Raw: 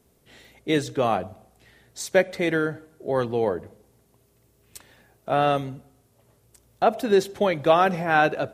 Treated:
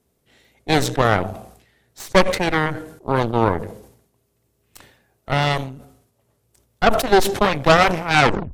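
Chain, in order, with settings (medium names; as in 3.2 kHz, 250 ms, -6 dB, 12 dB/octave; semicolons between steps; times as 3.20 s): tape stop on the ending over 0.34 s; Chebyshev shaper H 5 -27 dB, 6 -9 dB, 7 -19 dB, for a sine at -5 dBFS; decay stretcher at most 82 dB/s; trim +2 dB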